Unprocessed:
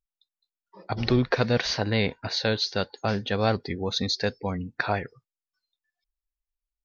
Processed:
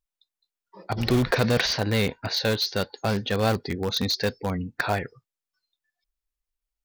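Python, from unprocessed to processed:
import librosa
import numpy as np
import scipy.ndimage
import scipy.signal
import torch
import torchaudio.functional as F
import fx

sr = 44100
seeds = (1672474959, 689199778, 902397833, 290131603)

p1 = (np.mod(10.0 ** (19.5 / 20.0) * x + 1.0, 2.0) - 1.0) / 10.0 ** (19.5 / 20.0)
p2 = x + (p1 * 10.0 ** (-10.5 / 20.0))
y = fx.env_flatten(p2, sr, amount_pct=50, at=(1.15, 1.66))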